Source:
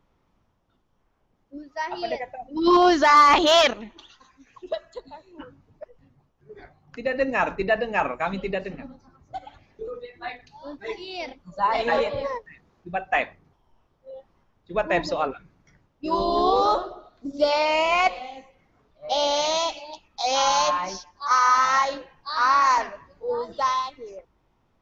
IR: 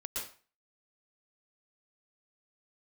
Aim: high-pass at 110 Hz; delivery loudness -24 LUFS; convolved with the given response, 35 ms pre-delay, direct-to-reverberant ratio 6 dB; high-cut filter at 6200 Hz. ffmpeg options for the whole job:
-filter_complex "[0:a]highpass=110,lowpass=6.2k,asplit=2[a][b];[1:a]atrim=start_sample=2205,adelay=35[c];[b][c]afir=irnorm=-1:irlink=0,volume=-7.5dB[d];[a][d]amix=inputs=2:normalize=0,volume=-2dB"

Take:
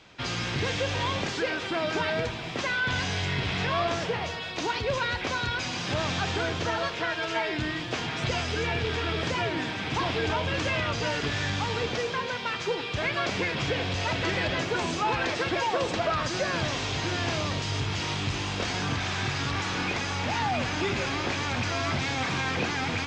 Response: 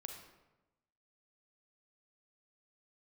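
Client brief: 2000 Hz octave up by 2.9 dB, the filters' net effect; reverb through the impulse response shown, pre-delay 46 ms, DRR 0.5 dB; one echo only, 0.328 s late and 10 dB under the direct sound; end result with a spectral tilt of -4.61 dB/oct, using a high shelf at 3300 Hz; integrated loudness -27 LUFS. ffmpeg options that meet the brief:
-filter_complex "[0:a]equalizer=f=2k:t=o:g=5.5,highshelf=f=3.3k:g=-5.5,aecho=1:1:328:0.316,asplit=2[a][b];[1:a]atrim=start_sample=2205,adelay=46[c];[b][c]afir=irnorm=-1:irlink=0,volume=3dB[d];[a][d]amix=inputs=2:normalize=0,volume=-2.5dB"

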